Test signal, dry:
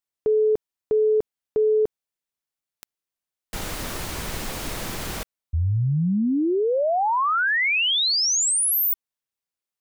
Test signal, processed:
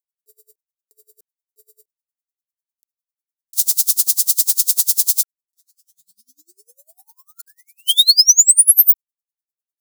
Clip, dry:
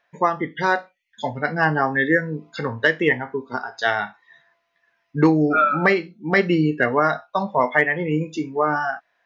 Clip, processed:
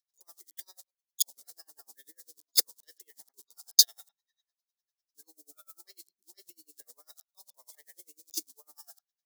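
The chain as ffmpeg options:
-filter_complex "[0:a]asuperstop=centerf=1500:order=12:qfactor=7.8,asplit=2[a][b];[b]acrusher=bits=5:mix=0:aa=0.000001,volume=-5dB[c];[a][c]amix=inputs=2:normalize=0,acompressor=threshold=-20dB:ratio=8:attack=0.6:release=49:knee=1:detection=rms,aexciter=amount=14.6:drive=8.2:freq=3.9k,agate=range=-32dB:threshold=-16dB:ratio=16:release=54:detection=peak,highpass=f=320:w=0.5412,highpass=f=320:w=1.3066,acrossover=split=3800[d][e];[e]acompressor=threshold=-2dB:ratio=4:attack=1:release=60[f];[d][f]amix=inputs=2:normalize=0,highshelf=f=3.8k:g=10.5,alimiter=level_in=-2.5dB:limit=-1dB:release=50:level=0:latency=1,aeval=exprs='val(0)*pow(10,-32*(0.5-0.5*cos(2*PI*10*n/s))/20)':c=same"

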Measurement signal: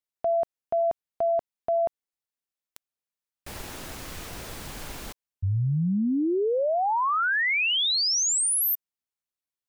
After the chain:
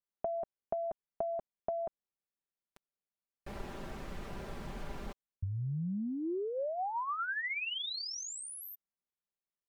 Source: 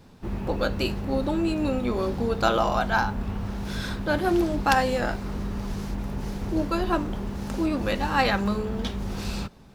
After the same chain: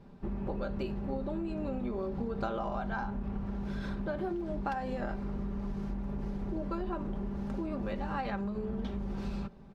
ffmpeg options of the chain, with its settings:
-af "lowpass=f=1k:p=1,aecho=1:1:5.1:0.48,acompressor=threshold=-35dB:ratio=12:attack=83:release=67:knee=6:detection=peak,volume=-2.5dB"

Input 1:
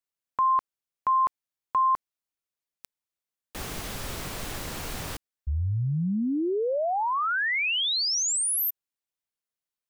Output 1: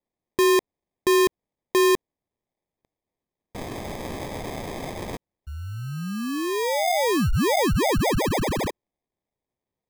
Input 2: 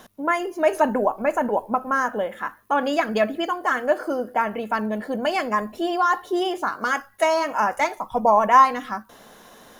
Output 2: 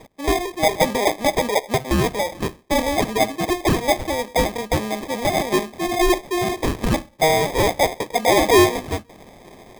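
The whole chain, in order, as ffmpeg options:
-filter_complex "[0:a]asplit=2[a][b];[b]highpass=f=720:p=1,volume=14dB,asoftclip=type=tanh:threshold=-3.5dB[c];[a][c]amix=inputs=2:normalize=0,lowpass=f=6.2k:p=1,volume=-6dB,acrusher=samples=31:mix=1:aa=0.000001,volume=-2.5dB"

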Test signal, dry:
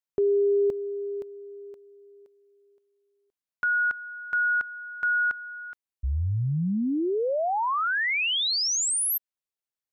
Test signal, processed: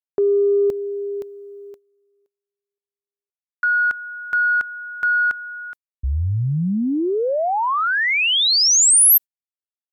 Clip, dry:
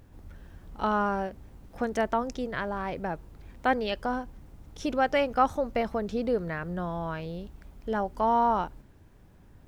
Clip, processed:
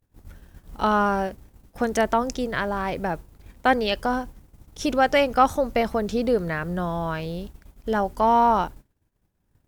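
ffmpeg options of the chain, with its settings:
-af "acontrast=50,agate=range=-33dB:threshold=-35dB:ratio=3:release=130:detection=peak,aemphasis=mode=production:type=cd"

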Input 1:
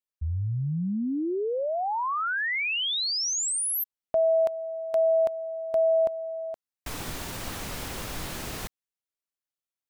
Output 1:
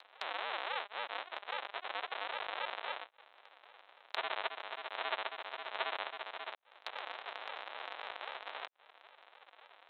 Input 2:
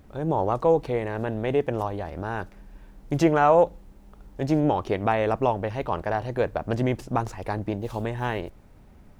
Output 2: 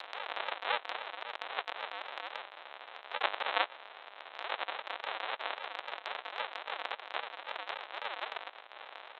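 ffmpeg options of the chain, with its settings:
-af "aresample=8000,acrusher=samples=31:mix=1:aa=0.000001:lfo=1:lforange=18.6:lforate=3.7,aresample=44100,acompressor=mode=upward:threshold=-24dB:ratio=4:attack=1.5:release=74:knee=2.83:detection=peak,highpass=f=670:w=0.5412,highpass=f=670:w=1.3066,volume=-1.5dB"

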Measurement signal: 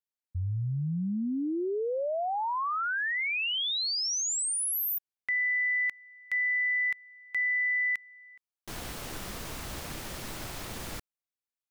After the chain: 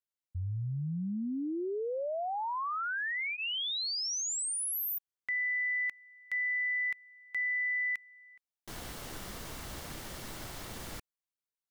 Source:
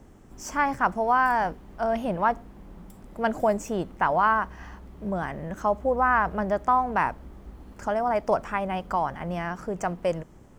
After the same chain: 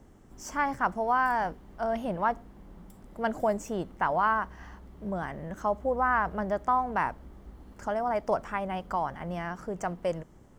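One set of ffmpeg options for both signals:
-af "bandreject=f=2.5k:w=18,volume=-4dB"

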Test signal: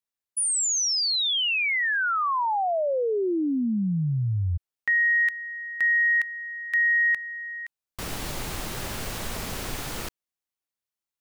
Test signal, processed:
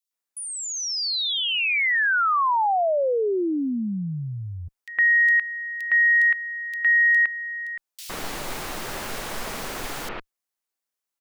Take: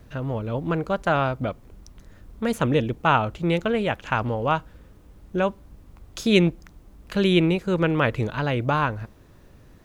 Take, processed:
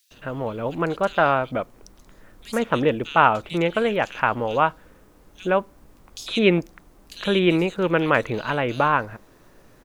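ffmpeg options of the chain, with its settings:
-filter_complex "[0:a]acrossover=split=4300[a][b];[b]acompressor=threshold=-40dB:ratio=4:attack=1:release=60[c];[a][c]amix=inputs=2:normalize=0,equalizer=f=67:t=o:w=2.9:g=-14.5,acrossover=split=3200[d][e];[d]adelay=110[f];[f][e]amix=inputs=2:normalize=0,volume=4.5dB"

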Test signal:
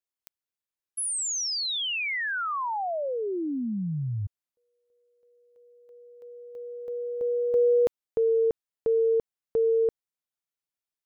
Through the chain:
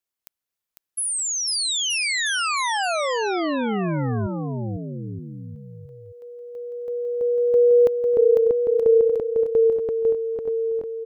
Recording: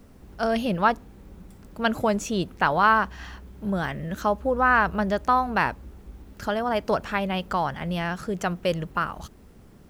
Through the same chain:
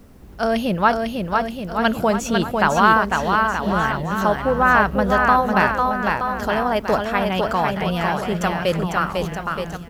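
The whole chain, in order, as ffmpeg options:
-af "equalizer=f=12k:w=7.2:g=6.5,aecho=1:1:500|925|1286|1593|1854:0.631|0.398|0.251|0.158|0.1,volume=4dB"

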